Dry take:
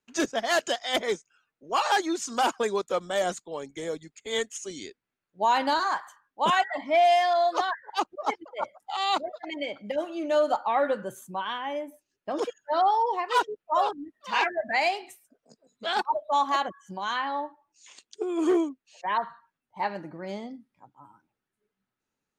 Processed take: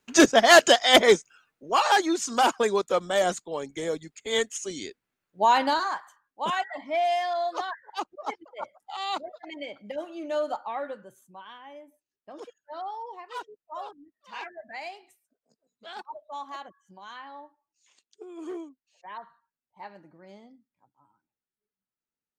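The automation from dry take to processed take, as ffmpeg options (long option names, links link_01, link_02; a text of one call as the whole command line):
ffmpeg -i in.wav -af "volume=10.5dB,afade=type=out:start_time=1.11:duration=0.65:silence=0.421697,afade=type=out:start_time=5.5:duration=0.51:silence=0.398107,afade=type=out:start_time=10.42:duration=0.67:silence=0.375837" out.wav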